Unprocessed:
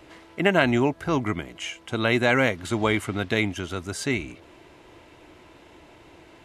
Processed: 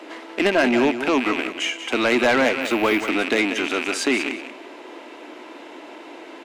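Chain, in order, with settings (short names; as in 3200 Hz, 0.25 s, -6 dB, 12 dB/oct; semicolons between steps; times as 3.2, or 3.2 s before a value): rattling part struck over -40 dBFS, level -20 dBFS; Chebyshev high-pass 250 Hz, order 4; high shelf 7500 Hz -9.5 dB; in parallel at +2.5 dB: compressor, threshold -32 dBFS, peak gain reduction 15.5 dB; on the sum: soft clip -16.5 dBFS, distortion -12 dB; on a send: feedback echo 0.186 s, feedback 17%, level -10.5 dB; 2.61–3.09 on the sum: decimation joined by straight lines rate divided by 3×; gain +4.5 dB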